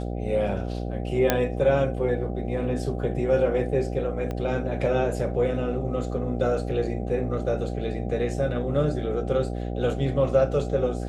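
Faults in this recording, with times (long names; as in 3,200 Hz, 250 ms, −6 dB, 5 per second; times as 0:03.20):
mains buzz 60 Hz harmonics 13 −30 dBFS
0:01.30: click −5 dBFS
0:04.31: click −19 dBFS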